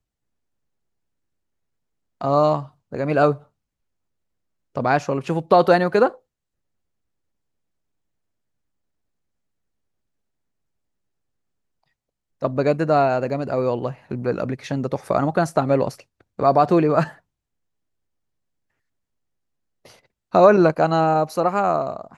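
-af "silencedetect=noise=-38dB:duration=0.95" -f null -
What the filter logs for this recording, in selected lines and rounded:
silence_start: 0.00
silence_end: 2.21 | silence_duration: 2.21
silence_start: 3.38
silence_end: 4.75 | silence_duration: 1.38
silence_start: 6.15
silence_end: 12.42 | silence_duration: 6.27
silence_start: 17.12
silence_end: 19.85 | silence_duration: 2.74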